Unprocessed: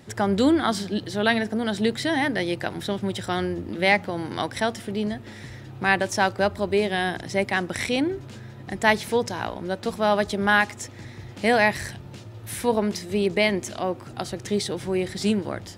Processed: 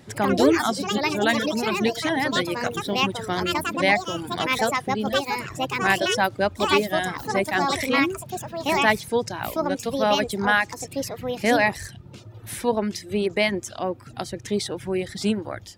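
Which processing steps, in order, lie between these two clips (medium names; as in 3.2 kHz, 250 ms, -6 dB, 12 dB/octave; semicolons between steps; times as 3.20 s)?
ever faster or slower copies 90 ms, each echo +5 st, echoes 2; reverb removal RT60 0.73 s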